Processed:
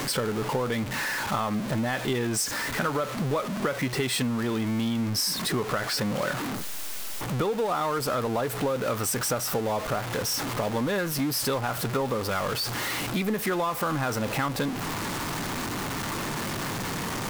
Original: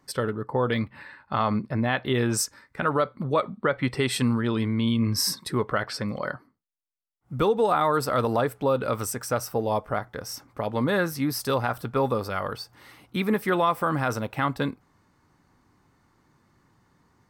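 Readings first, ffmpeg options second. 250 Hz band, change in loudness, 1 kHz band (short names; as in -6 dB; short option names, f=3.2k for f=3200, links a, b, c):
-1.0 dB, -1.5 dB, -2.0 dB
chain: -af "aeval=exprs='val(0)+0.5*0.0596*sgn(val(0))':c=same,equalizer=f=62:t=o:w=1.1:g=-9.5,acompressor=threshold=-24dB:ratio=6"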